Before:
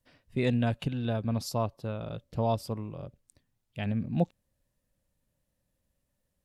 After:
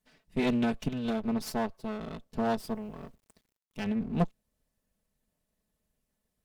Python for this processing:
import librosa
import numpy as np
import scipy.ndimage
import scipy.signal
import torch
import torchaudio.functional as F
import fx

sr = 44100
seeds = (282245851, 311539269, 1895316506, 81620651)

y = fx.lower_of_two(x, sr, delay_ms=4.6)
y = fx.quant_dither(y, sr, seeds[0], bits=12, dither='none', at=(2.58, 3.84))